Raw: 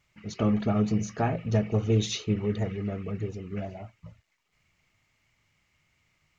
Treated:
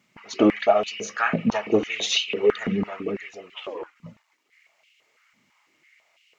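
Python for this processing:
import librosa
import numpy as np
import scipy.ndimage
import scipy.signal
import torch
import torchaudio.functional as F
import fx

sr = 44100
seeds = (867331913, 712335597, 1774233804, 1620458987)

y = fx.dynamic_eq(x, sr, hz=2800.0, q=1.3, threshold_db=-52.0, ratio=4.0, max_db=5)
y = fx.ring_mod(y, sr, carrier_hz=fx.line((3.54, 910.0), (3.94, 150.0)), at=(3.54, 3.94), fade=0.02)
y = fx.filter_held_highpass(y, sr, hz=6.0, low_hz=220.0, high_hz=2800.0)
y = y * 10.0 ** (5.0 / 20.0)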